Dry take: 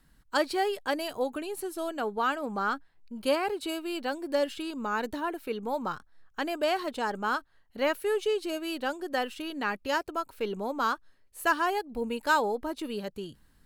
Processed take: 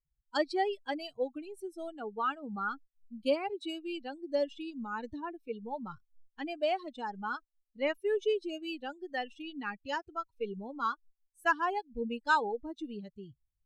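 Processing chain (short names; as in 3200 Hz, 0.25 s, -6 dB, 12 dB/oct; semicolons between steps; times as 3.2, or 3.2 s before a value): per-bin expansion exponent 2; LPF 5200 Hz 12 dB/oct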